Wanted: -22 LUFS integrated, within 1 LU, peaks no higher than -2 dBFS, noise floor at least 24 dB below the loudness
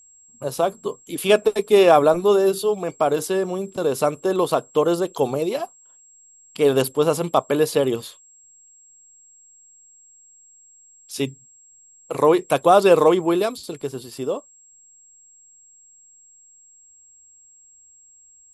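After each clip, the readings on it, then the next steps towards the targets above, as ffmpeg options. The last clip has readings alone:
steady tone 7600 Hz; tone level -49 dBFS; loudness -20.0 LUFS; peak -2.0 dBFS; loudness target -22.0 LUFS
-> -af "bandreject=f=7.6k:w=30"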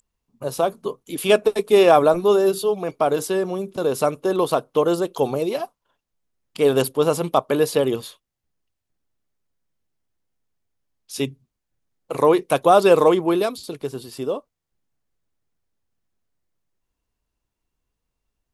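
steady tone none; loudness -20.0 LUFS; peak -2.0 dBFS; loudness target -22.0 LUFS
-> -af "volume=-2dB"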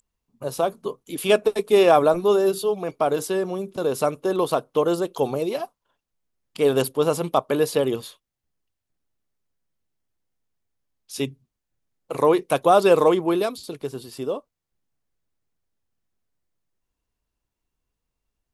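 loudness -22.0 LUFS; peak -4.0 dBFS; noise floor -83 dBFS

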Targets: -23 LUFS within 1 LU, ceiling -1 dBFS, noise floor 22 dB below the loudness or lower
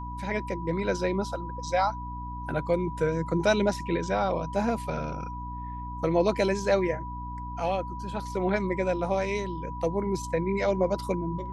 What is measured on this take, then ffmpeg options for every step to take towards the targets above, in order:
hum 60 Hz; harmonics up to 300 Hz; hum level -36 dBFS; steady tone 980 Hz; tone level -37 dBFS; loudness -28.5 LUFS; peak -10.5 dBFS; loudness target -23.0 LUFS
-> -af "bandreject=f=60:t=h:w=6,bandreject=f=120:t=h:w=6,bandreject=f=180:t=h:w=6,bandreject=f=240:t=h:w=6,bandreject=f=300:t=h:w=6"
-af "bandreject=f=980:w=30"
-af "volume=5.5dB"

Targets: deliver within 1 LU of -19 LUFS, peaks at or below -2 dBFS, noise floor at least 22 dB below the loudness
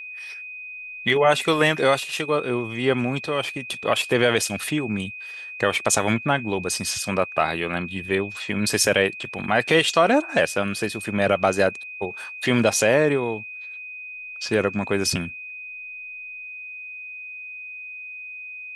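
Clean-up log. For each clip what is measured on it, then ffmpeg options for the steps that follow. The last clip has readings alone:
steady tone 2500 Hz; tone level -34 dBFS; loudness -22.0 LUFS; peak -4.0 dBFS; loudness target -19.0 LUFS
-> -af "bandreject=f=2.5k:w=30"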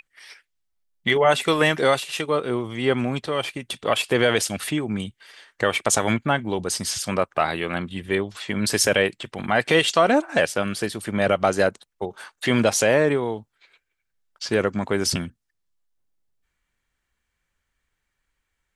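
steady tone none; loudness -22.5 LUFS; peak -4.0 dBFS; loudness target -19.0 LUFS
-> -af "volume=3.5dB,alimiter=limit=-2dB:level=0:latency=1"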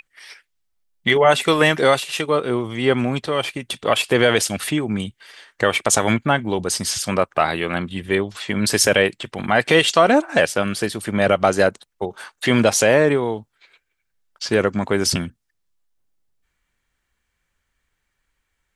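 loudness -19.0 LUFS; peak -2.0 dBFS; noise floor -75 dBFS

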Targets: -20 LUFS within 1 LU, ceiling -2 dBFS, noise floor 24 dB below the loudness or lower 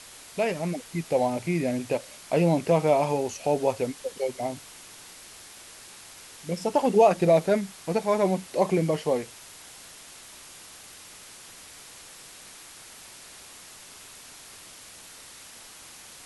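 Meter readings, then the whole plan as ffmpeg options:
noise floor -47 dBFS; noise floor target -50 dBFS; loudness -25.5 LUFS; peak -8.0 dBFS; loudness target -20.0 LUFS
-> -af "afftdn=nr=6:nf=-47"
-af "volume=5.5dB"

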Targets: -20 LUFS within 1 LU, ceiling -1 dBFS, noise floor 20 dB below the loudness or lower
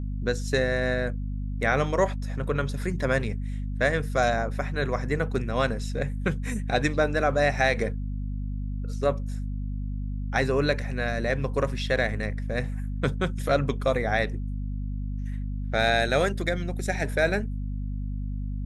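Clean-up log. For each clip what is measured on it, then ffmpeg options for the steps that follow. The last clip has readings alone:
hum 50 Hz; harmonics up to 250 Hz; hum level -28 dBFS; loudness -27.5 LUFS; peak -9.0 dBFS; loudness target -20.0 LUFS
-> -af "bandreject=f=50:t=h:w=4,bandreject=f=100:t=h:w=4,bandreject=f=150:t=h:w=4,bandreject=f=200:t=h:w=4,bandreject=f=250:t=h:w=4"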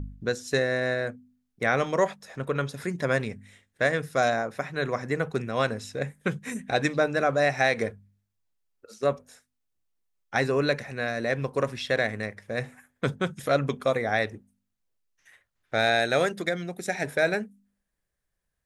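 hum none; loudness -27.5 LUFS; peak -9.5 dBFS; loudness target -20.0 LUFS
-> -af "volume=7.5dB"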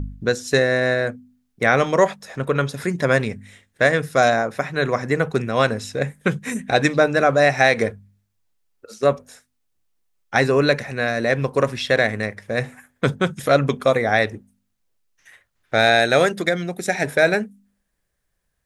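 loudness -20.0 LUFS; peak -2.0 dBFS; noise floor -73 dBFS

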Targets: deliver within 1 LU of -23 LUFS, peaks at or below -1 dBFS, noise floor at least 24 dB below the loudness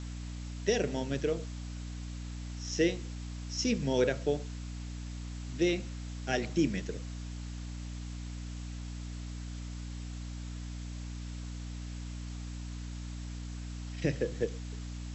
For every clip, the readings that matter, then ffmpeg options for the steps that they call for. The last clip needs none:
hum 60 Hz; harmonics up to 300 Hz; hum level -38 dBFS; noise floor -41 dBFS; noise floor target -60 dBFS; loudness -36.0 LUFS; peak -15.5 dBFS; loudness target -23.0 LUFS
-> -af "bandreject=f=60:t=h:w=6,bandreject=f=120:t=h:w=6,bandreject=f=180:t=h:w=6,bandreject=f=240:t=h:w=6,bandreject=f=300:t=h:w=6"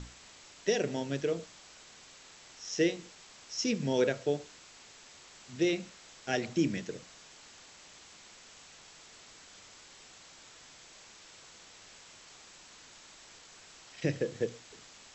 hum none; noise floor -55 dBFS; noise floor target -57 dBFS
-> -af "afftdn=nr=6:nf=-55"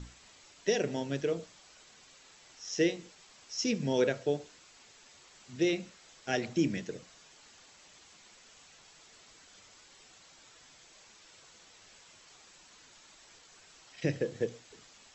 noise floor -59 dBFS; loudness -33.0 LUFS; peak -15.5 dBFS; loudness target -23.0 LUFS
-> -af "volume=10dB"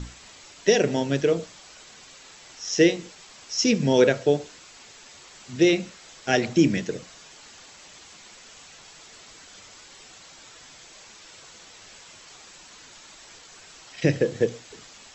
loudness -23.0 LUFS; peak -5.5 dBFS; noise floor -49 dBFS

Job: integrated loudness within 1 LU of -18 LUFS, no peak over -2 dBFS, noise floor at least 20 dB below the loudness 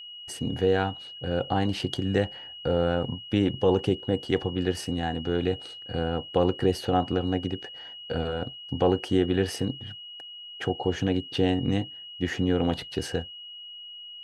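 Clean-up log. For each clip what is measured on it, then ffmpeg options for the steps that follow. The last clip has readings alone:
steady tone 2900 Hz; tone level -40 dBFS; loudness -27.5 LUFS; peak -9.0 dBFS; loudness target -18.0 LUFS
-> -af "bandreject=f=2.9k:w=30"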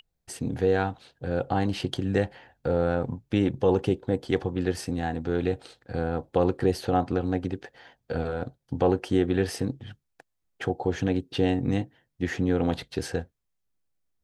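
steady tone none; loudness -28.0 LUFS; peak -9.0 dBFS; loudness target -18.0 LUFS
-> -af "volume=10dB,alimiter=limit=-2dB:level=0:latency=1"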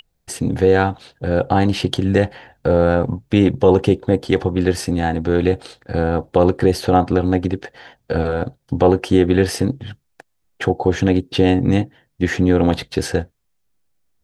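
loudness -18.0 LUFS; peak -2.0 dBFS; noise floor -68 dBFS

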